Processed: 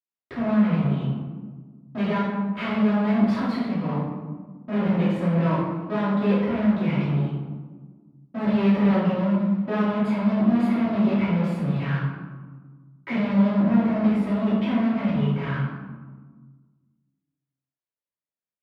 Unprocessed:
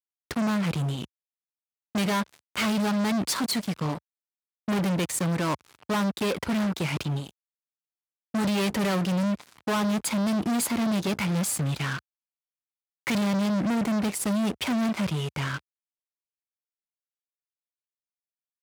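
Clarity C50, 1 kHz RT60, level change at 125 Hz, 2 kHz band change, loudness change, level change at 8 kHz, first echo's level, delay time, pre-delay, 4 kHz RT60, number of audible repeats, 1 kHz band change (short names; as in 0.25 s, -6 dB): 0.0 dB, 1.4 s, +5.5 dB, -1.0 dB, +4.0 dB, under -25 dB, none, none, 3 ms, 0.70 s, none, +1.5 dB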